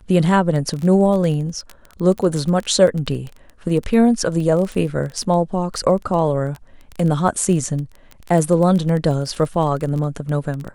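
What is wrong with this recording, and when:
crackle 16 per s -23 dBFS

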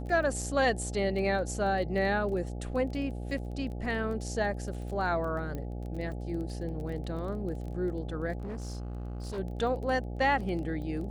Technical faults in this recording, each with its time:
buzz 60 Hz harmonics 14 -37 dBFS
crackle 15 per s -38 dBFS
5.55 s: pop -25 dBFS
8.38–9.39 s: clipped -33.5 dBFS

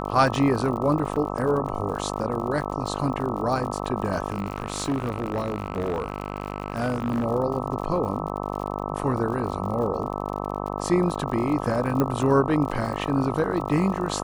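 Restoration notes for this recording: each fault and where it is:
buzz 50 Hz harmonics 26 -30 dBFS
crackle 65 per s -33 dBFS
1.16 s: dropout 4.7 ms
4.30–7.26 s: clipped -21 dBFS
12.00 s: pop -11 dBFS

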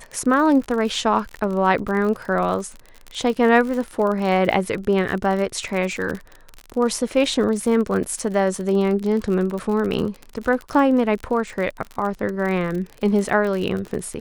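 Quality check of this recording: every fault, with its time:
crackle 42 per s -26 dBFS

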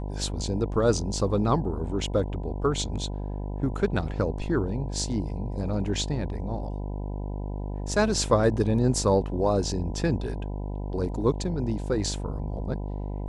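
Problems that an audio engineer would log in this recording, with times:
buzz 50 Hz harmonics 20 -32 dBFS

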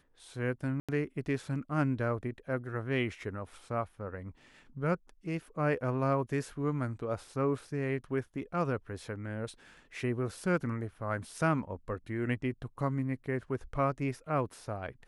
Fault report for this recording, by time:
0.80–0.89 s: dropout 86 ms

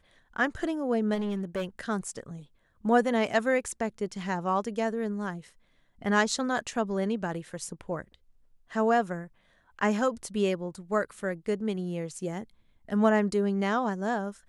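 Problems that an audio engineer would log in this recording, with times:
1.14–1.65 s: clipped -27 dBFS

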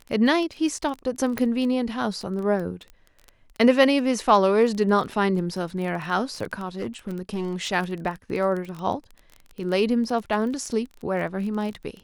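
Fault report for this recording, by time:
crackle 20 per s -29 dBFS
1.38 s: pop -13 dBFS
6.77–7.73 s: clipped -24 dBFS

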